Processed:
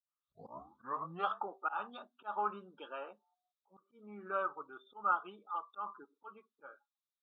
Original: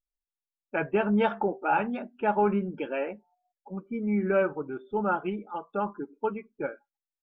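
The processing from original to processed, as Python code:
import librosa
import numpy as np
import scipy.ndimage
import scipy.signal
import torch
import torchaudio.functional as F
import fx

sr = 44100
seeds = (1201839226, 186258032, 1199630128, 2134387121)

y = fx.tape_start_head(x, sr, length_s=1.39)
y = fx.auto_swell(y, sr, attack_ms=150.0)
y = fx.double_bandpass(y, sr, hz=2100.0, octaves=1.6)
y = y * librosa.db_to_amplitude(5.5)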